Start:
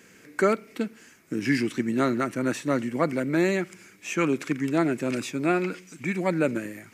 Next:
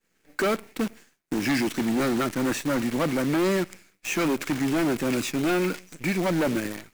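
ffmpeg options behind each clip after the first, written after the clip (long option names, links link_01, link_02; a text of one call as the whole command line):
ffmpeg -i in.wav -af "acrusher=bits=7:dc=4:mix=0:aa=0.000001,asoftclip=type=hard:threshold=-24.5dB,agate=range=-33dB:threshold=-44dB:ratio=3:detection=peak,volume=4dB" out.wav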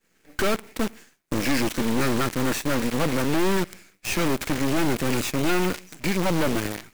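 ffmpeg -i in.wav -af "aeval=exprs='clip(val(0),-1,0.00596)':channel_layout=same,volume=5dB" out.wav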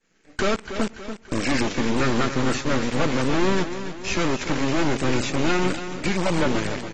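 ffmpeg -i in.wav -filter_complex "[0:a]asplit=2[link_01][link_02];[link_02]aecho=0:1:287|574|861|1148|1435:0.299|0.149|0.0746|0.0373|0.0187[link_03];[link_01][link_03]amix=inputs=2:normalize=0" -ar 32000 -c:a aac -b:a 24k out.aac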